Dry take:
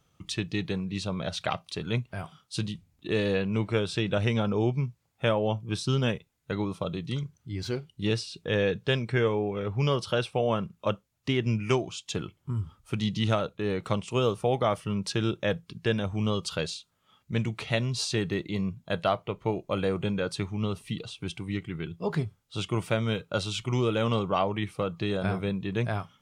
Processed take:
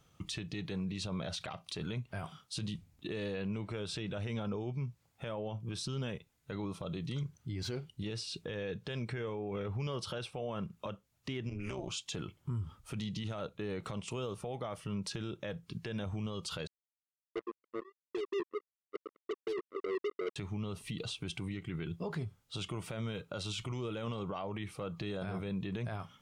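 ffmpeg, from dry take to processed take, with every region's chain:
ffmpeg -i in.wav -filter_complex "[0:a]asettb=1/sr,asplit=3[link_01][link_02][link_03];[link_01]atrim=end=11.494[link_04];[link_02]atrim=start=11.49:end=11.9,asetpts=PTS-STARTPTS,afade=type=in:duration=0.004:curve=qsin,afade=type=out:start_time=0.406:duration=0.004:curve=qsin,acompressor=threshold=-28dB:ratio=6:attack=3.2:release=140:knee=1:detection=peak,tremolo=f=200:d=0.889[link_05];[link_03]atrim=start=11.896[link_06];[link_04][link_05]acrossfade=duration=0.004:curve1=hsin:curve2=qsin[link_07];[link_07][link_06]acrossfade=duration=0.004:curve1=qsin:curve2=hsin,asettb=1/sr,asplit=3[link_08][link_09][link_10];[link_08]atrim=end=16.674[link_11];[link_09]atrim=start=16.67:end=20.36,asetpts=PTS-STARTPTS,afade=type=in:duration=0.004:curve=qsin,afade=type=out:start_time=3.686:duration=0.004:curve=qsin,asuperpass=centerf=390:order=12:qfactor=3.3,acrusher=bits=5:mix=0:aa=0.5[link_12];[link_10]atrim=start=20.356[link_13];[link_11][link_12]acrossfade=duration=0.004:curve1=hsin:curve2=qsin[link_14];[link_14][link_13]acrossfade=duration=0.004:curve1=qsin:curve2=hsin,acompressor=threshold=-32dB:ratio=6,alimiter=level_in=7.5dB:limit=-24dB:level=0:latency=1:release=33,volume=-7.5dB,volume=1.5dB" out.wav

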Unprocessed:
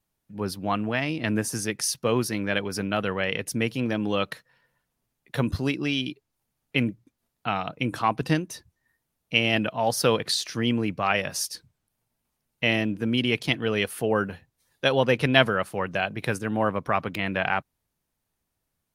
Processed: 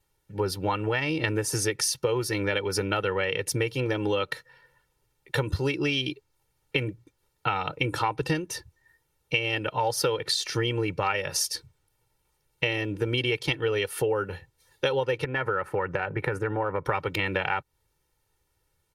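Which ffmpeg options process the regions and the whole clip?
ffmpeg -i in.wav -filter_complex "[0:a]asettb=1/sr,asplit=3[link_01][link_02][link_03];[link_01]atrim=end=15.244[link_04];[link_02]atrim=start=15.24:end=16.85,asetpts=PTS-STARTPTS,afade=type=in:duration=0.004:curve=qsin,afade=type=out:start_time=1.606:duration=0.004:curve=qsin,highshelf=frequency=2600:width_type=q:width=1.5:gain=-13.5,acompressor=threshold=-27dB:ratio=3:attack=3.2:release=140:knee=1:detection=peak[link_05];[link_03]atrim=start=16.846[link_06];[link_04][link_05]acrossfade=duration=0.004:curve1=hsin:curve2=qsin[link_07];[link_07][link_06]acrossfade=duration=0.004:curve1=qsin:curve2=hsin,highshelf=frequency=12000:gain=-6,aecho=1:1:2.2:0.89,acompressor=threshold=-27dB:ratio=10,volume=4.5dB" out.wav

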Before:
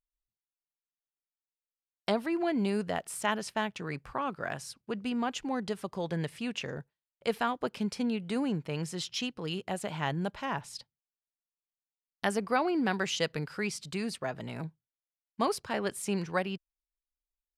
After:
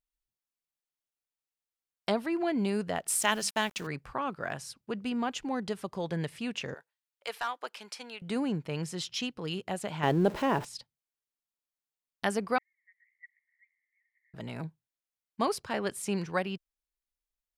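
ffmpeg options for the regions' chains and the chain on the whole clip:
ffmpeg -i in.wav -filter_complex "[0:a]asettb=1/sr,asplit=3[link_01][link_02][link_03];[link_01]atrim=end=3.084[link_04];[link_02]atrim=start=3.08:end=3.87,asetpts=PTS-STARTPTS,afade=type=in:duration=0.004:curve=qsin,afade=type=out:start_time=0.786:duration=0.004:curve=qsin,highshelf=frequency=2700:gain=11.5,bandreject=frequency=50:width_type=h:width=6,bandreject=frequency=100:width_type=h:width=6,bandreject=frequency=150:width_type=h:width=6,bandreject=frequency=200:width_type=h:width=6,aeval=exprs='val(0)*gte(abs(val(0)),0.00562)':channel_layout=same[link_05];[link_03]atrim=start=3.866[link_06];[link_04][link_05]acrossfade=duration=0.004:curve1=hsin:curve2=qsin[link_07];[link_07][link_06]acrossfade=duration=0.004:curve1=qsin:curve2=hsin,asettb=1/sr,asplit=3[link_08][link_09][link_10];[link_08]atrim=end=6.744[link_11];[link_09]atrim=start=6.74:end=8.22,asetpts=PTS-STARTPTS,afade=type=in:duration=0.004:curve=qsin,afade=type=out:start_time=1.476:duration=0.004:curve=qsin,highpass=820,asoftclip=type=hard:threshold=-24.5dB[link_12];[link_10]atrim=start=8.216[link_13];[link_11][link_12]acrossfade=duration=0.004:curve1=hsin:curve2=qsin[link_14];[link_14][link_13]acrossfade=duration=0.004:curve1=qsin:curve2=hsin,asettb=1/sr,asplit=3[link_15][link_16][link_17];[link_15]atrim=end=10.034[link_18];[link_16]atrim=start=10.03:end=10.65,asetpts=PTS-STARTPTS,afade=type=in:duration=0.004:curve=qsin,afade=type=out:start_time=0.616:duration=0.004:curve=qsin,aeval=exprs='val(0)+0.5*0.00841*sgn(val(0))':channel_layout=same,equalizer=frequency=380:width=0.9:gain=12.5[link_19];[link_17]atrim=start=10.646[link_20];[link_18][link_19]acrossfade=duration=0.004:curve1=hsin:curve2=qsin[link_21];[link_21][link_20]acrossfade=duration=0.004:curve1=qsin:curve2=hsin,asettb=1/sr,asplit=3[link_22][link_23][link_24];[link_22]atrim=end=12.584[link_25];[link_23]atrim=start=12.58:end=14.34,asetpts=PTS-STARTPTS,afade=type=in:duration=0.004:curve=qsin,afade=type=out:start_time=1.756:duration=0.004:curve=qsin,aeval=exprs='val(0)+0.5*0.0316*sgn(val(0))':channel_layout=same,agate=range=-27dB:threshold=-23dB:ratio=16:release=100:detection=peak,asuperpass=centerf=2000:order=8:qfactor=5.6[link_26];[link_24]atrim=start=14.336[link_27];[link_25][link_26]acrossfade=duration=0.004:curve1=hsin:curve2=qsin[link_28];[link_28][link_27]acrossfade=duration=0.004:curve1=qsin:curve2=hsin" out.wav

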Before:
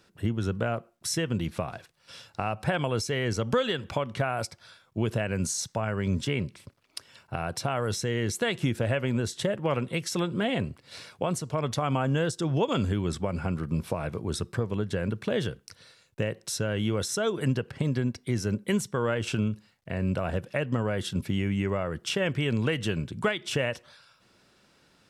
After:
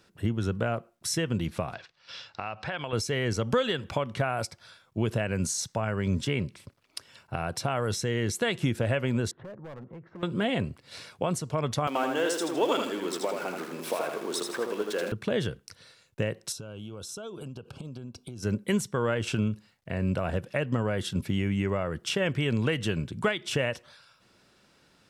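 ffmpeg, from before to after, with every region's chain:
ffmpeg -i in.wav -filter_complex "[0:a]asettb=1/sr,asplit=3[link_01][link_02][link_03];[link_01]atrim=end=1.744[link_04];[link_02]atrim=start=1.74:end=2.93,asetpts=PTS-STARTPTS,afade=type=in:duration=0.004:curve=qsin,afade=type=out:start_time=1.186:duration=0.004:curve=qsin,lowpass=frequency=5300:width=0.5412,lowpass=frequency=5300:width=1.3066,tiltshelf=frequency=650:gain=-5.5,acompressor=threshold=-34dB:ratio=2:attack=3.2:release=140:knee=1:detection=peak[link_05];[link_03]atrim=start=2.926[link_06];[link_04][link_05]acrossfade=duration=0.004:curve1=hsin:curve2=qsin[link_07];[link_07][link_06]acrossfade=duration=0.004:curve1=qsin:curve2=hsin,asettb=1/sr,asplit=3[link_08][link_09][link_10];[link_08]atrim=end=9.314[link_11];[link_09]atrim=start=9.31:end=10.23,asetpts=PTS-STARTPTS,afade=type=in:duration=0.004:curve=qsin,afade=type=out:start_time=0.916:duration=0.004:curve=qsin,lowpass=frequency=1400:width=0.5412,lowpass=frequency=1400:width=1.3066,asoftclip=type=hard:threshold=-26.5dB,acompressor=threshold=-45dB:ratio=3:attack=3.2:release=140:knee=1:detection=peak[link_12];[link_10]atrim=start=10.226[link_13];[link_11][link_12]acrossfade=duration=0.004:curve1=hsin:curve2=qsin[link_14];[link_14][link_13]acrossfade=duration=0.004:curve1=qsin:curve2=hsin,asettb=1/sr,asplit=3[link_15][link_16][link_17];[link_15]atrim=end=11.874[link_18];[link_16]atrim=start=11.87:end=15.12,asetpts=PTS-STARTPTS,afade=type=in:duration=0.004:curve=qsin,afade=type=out:start_time=3.246:duration=0.004:curve=qsin,aeval=exprs='val(0)+0.5*0.015*sgn(val(0))':channel_layout=same,highpass=frequency=300:width=0.5412,highpass=frequency=300:width=1.3066,aecho=1:1:80|160|240|320|400:0.596|0.226|0.086|0.0327|0.0124,atrim=end_sample=143325[link_19];[link_17]atrim=start=15.116[link_20];[link_18][link_19]acrossfade=duration=0.004:curve1=hsin:curve2=qsin[link_21];[link_21][link_20]acrossfade=duration=0.004:curve1=qsin:curve2=hsin,asettb=1/sr,asplit=3[link_22][link_23][link_24];[link_22]atrim=end=16.524[link_25];[link_23]atrim=start=16.52:end=18.43,asetpts=PTS-STARTPTS,afade=type=in:duration=0.004:curve=qsin,afade=type=out:start_time=1.906:duration=0.004:curve=qsin,acompressor=threshold=-36dB:ratio=10:attack=3.2:release=140:knee=1:detection=peak,asuperstop=centerf=1900:order=4:qfactor=2[link_26];[link_24]atrim=start=18.426[link_27];[link_25][link_26]acrossfade=duration=0.004:curve1=hsin:curve2=qsin[link_28];[link_28][link_27]acrossfade=duration=0.004:curve1=qsin:curve2=hsin" out.wav

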